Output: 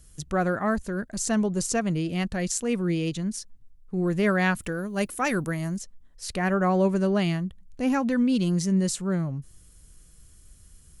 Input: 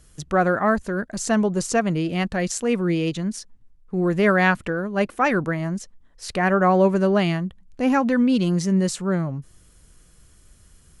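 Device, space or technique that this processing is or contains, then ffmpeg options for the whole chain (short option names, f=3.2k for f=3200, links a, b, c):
smiley-face EQ: -filter_complex "[0:a]asettb=1/sr,asplit=3[a][b][c];[a]atrim=end=4.564[d];[b]atrim=start=4.56:end=5.77,asetpts=PTS-STARTPTS,afade=t=in:d=0.004:c=qsin,afade=t=out:st=1.206:d=0.004:c=qsin,aemphasis=mode=production:type=50fm[e];[c]atrim=start=5.766[f];[d][e]acrossfade=d=0.004:c1=hsin:c2=qsin[g];[g][f]acrossfade=d=0.004:c1=qsin:c2=hsin,lowshelf=f=120:g=5.5,equalizer=f=960:t=o:w=2.7:g=-3.5,highshelf=f=6.8k:g=8,volume=-4dB"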